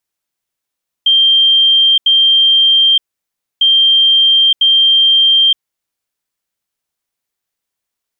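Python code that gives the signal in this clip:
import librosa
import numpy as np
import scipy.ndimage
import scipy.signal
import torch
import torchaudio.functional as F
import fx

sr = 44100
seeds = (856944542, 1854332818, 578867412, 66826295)

y = fx.beep_pattern(sr, wave='sine', hz=3170.0, on_s=0.92, off_s=0.08, beeps=2, pause_s=0.63, groups=2, level_db=-6.0)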